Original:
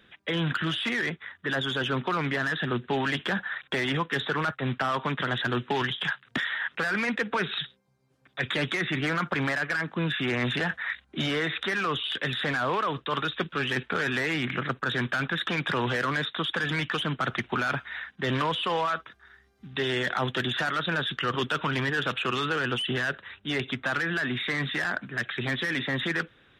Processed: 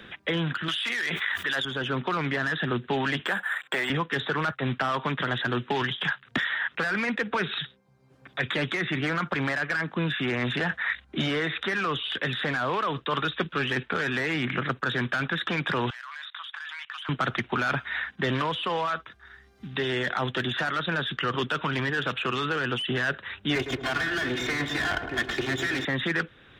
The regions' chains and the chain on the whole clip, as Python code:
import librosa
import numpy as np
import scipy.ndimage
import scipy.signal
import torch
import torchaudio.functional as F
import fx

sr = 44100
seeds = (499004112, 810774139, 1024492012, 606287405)

y = fx.chain(x, sr, fx.tilt_eq(slope=4.5),
    fx.env_flatten(amount_pct=100), at=(0.68, 1.65))
y = fx.chain(y, sr, fx.weighting(curve='A'),
    fx.resample_linear(factor=4), at=(3.26, 3.9))
y = fx.chain(y, sr, fx.cheby2_highpass(hz=470.0, order=4, stop_db=40),
    fx.level_steps(step_db=22), at=(15.9, 17.09))
y = fx.chain(y, sr, fx.lower_of_two(delay_ms=2.8),
    fx.highpass(hz=59.0, slope=12),
    fx.echo_filtered(ms=108, feedback_pct=61, hz=1100.0, wet_db=-6.5), at=(23.55, 25.85))
y = fx.rider(y, sr, range_db=10, speed_s=0.5)
y = fx.high_shelf(y, sr, hz=6200.0, db=-6.0)
y = fx.band_squash(y, sr, depth_pct=40)